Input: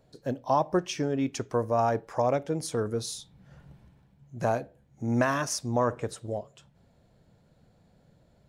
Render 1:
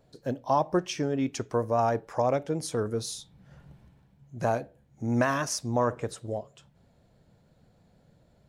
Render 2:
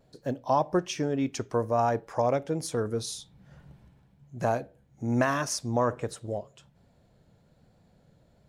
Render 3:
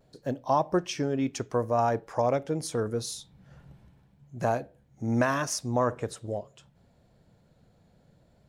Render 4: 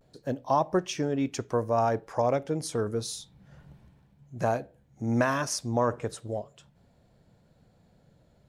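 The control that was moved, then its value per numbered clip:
pitch vibrato, speed: 6.3, 1.2, 0.74, 0.32 Hertz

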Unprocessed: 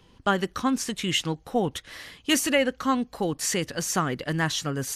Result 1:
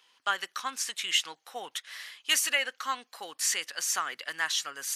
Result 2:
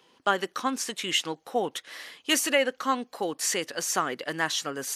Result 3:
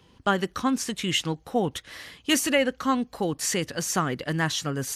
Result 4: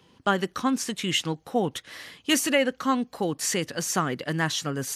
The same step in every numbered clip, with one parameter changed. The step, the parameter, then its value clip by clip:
high-pass filter, corner frequency: 1,300, 380, 44, 120 Hertz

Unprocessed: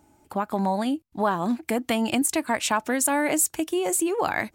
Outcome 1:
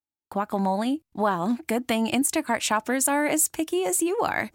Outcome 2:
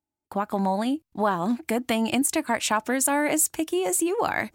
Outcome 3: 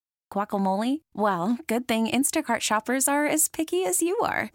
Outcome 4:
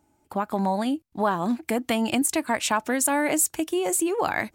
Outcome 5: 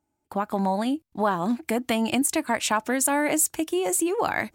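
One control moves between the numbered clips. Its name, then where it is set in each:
noise gate, range: −44, −31, −59, −7, −19 decibels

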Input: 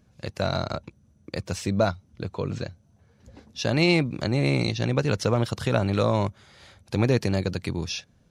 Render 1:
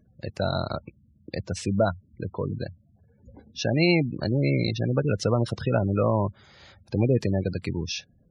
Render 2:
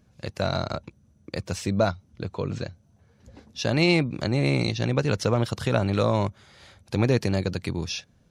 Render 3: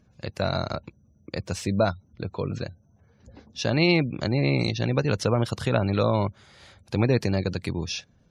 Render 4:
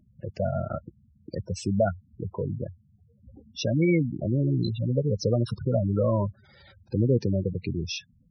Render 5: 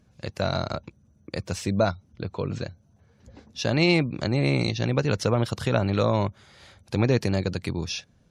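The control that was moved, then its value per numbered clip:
gate on every frequency bin, under each frame's peak: −20, −60, −35, −10, −45 decibels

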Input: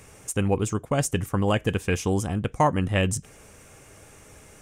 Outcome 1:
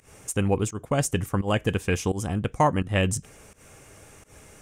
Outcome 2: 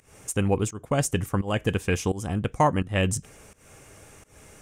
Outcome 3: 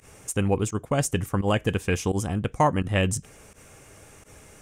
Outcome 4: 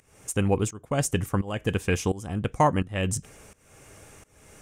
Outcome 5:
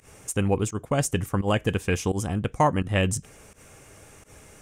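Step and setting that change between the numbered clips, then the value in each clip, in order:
fake sidechain pumping, release: 157, 246, 72, 457, 106 milliseconds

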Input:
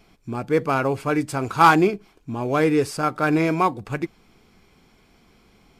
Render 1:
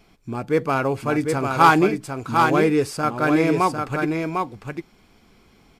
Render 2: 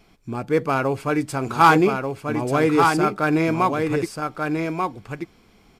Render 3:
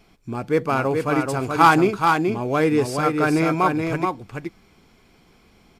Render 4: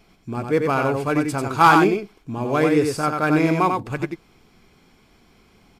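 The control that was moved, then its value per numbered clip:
single-tap delay, delay time: 751, 1,187, 427, 93 milliseconds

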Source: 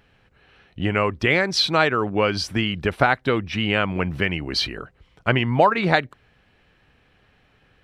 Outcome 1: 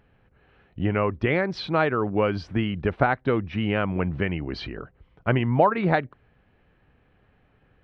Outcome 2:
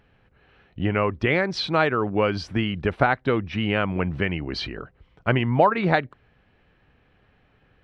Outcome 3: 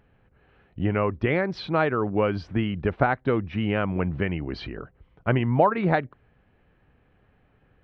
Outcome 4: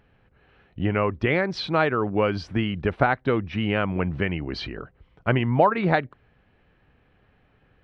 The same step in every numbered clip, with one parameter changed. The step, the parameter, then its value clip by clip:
head-to-tape spacing loss, at 10 kHz: 37, 20, 45, 29 decibels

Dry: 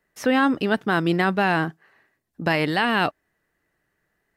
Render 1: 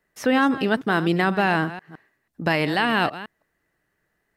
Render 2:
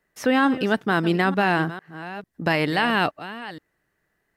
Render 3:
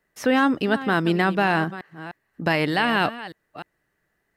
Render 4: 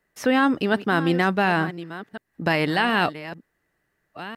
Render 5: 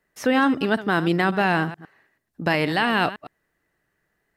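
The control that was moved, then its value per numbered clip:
delay that plays each chunk backwards, delay time: 163, 448, 302, 725, 109 milliseconds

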